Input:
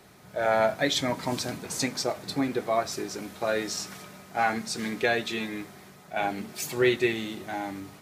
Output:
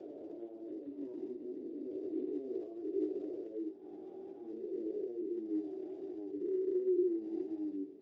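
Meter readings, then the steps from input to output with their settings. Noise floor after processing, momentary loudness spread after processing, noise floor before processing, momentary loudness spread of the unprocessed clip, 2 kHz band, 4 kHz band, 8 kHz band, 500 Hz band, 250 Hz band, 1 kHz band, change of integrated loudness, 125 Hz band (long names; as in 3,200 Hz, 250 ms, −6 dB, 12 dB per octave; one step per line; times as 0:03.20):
−51 dBFS, 13 LU, −51 dBFS, 12 LU, below −40 dB, below −40 dB, below −40 dB, −9.0 dB, −5.5 dB, −34.0 dB, −11.0 dB, below −25 dB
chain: peak hold with a rise ahead of every peak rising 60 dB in 2.47 s
downward compressor 6 to 1, threshold −26 dBFS, peak gain reduction 10 dB
brickwall limiter −25.5 dBFS, peak gain reduction 10 dB
mains hum 60 Hz, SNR 15 dB
chorus effect 1.3 Hz, delay 19 ms, depth 7.7 ms
flat-topped band-pass 350 Hz, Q 3.4
level +6.5 dB
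Speex 13 kbit/s 16,000 Hz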